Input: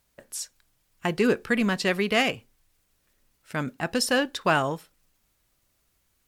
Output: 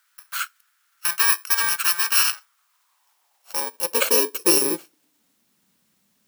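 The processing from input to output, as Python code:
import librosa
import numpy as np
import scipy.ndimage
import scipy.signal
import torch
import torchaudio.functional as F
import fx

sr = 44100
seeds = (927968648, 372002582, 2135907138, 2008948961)

y = fx.bit_reversed(x, sr, seeds[0], block=64)
y = fx.filter_sweep_highpass(y, sr, from_hz=1400.0, to_hz=200.0, start_s=2.33, end_s=5.67, q=4.5)
y = y * 10.0 ** (4.0 / 20.0)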